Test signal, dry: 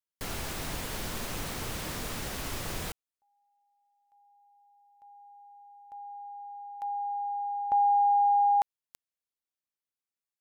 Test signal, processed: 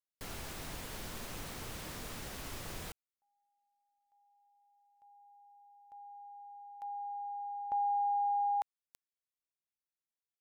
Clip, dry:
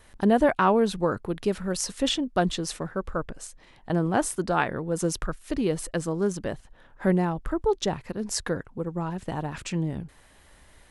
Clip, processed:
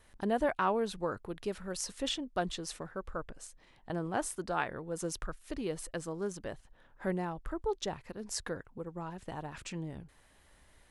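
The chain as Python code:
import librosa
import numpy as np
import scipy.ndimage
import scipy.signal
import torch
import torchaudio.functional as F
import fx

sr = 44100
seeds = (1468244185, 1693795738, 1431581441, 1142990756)

y = fx.dynamic_eq(x, sr, hz=190.0, q=0.71, threshold_db=-38.0, ratio=5.0, max_db=-5)
y = y * librosa.db_to_amplitude(-8.0)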